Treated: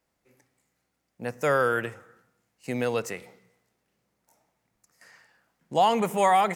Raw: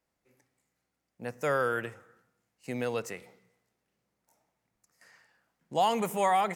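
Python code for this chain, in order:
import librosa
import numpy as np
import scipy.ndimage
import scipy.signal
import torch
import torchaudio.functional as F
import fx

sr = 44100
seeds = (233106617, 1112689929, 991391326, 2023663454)

y = fx.high_shelf(x, sr, hz=5600.0, db=-7.0, at=(5.78, 6.18))
y = y * 10.0 ** (5.0 / 20.0)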